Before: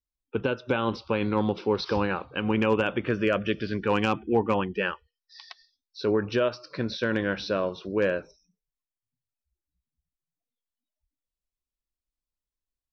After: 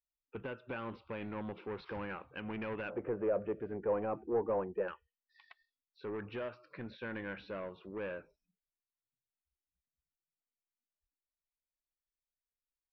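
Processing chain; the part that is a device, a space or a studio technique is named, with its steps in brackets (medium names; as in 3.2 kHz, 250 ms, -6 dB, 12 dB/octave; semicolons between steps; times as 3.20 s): overdriven synthesiser ladder filter (saturation -23 dBFS, distortion -11 dB; four-pole ladder low-pass 2.9 kHz, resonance 35%); 2.90–4.88 s: FFT filter 250 Hz 0 dB, 500 Hz +12 dB, 1 kHz +3 dB, 3.5 kHz -21 dB; trim -5 dB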